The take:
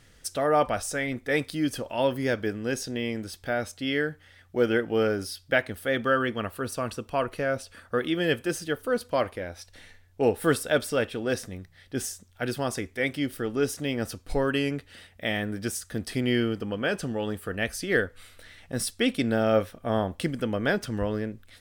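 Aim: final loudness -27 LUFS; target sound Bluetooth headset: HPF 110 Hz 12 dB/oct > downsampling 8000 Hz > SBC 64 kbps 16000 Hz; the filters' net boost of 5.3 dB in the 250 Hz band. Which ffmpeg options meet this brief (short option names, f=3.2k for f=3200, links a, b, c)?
-af "highpass=110,equalizer=f=250:t=o:g=6.5,aresample=8000,aresample=44100,volume=-1dB" -ar 16000 -c:a sbc -b:a 64k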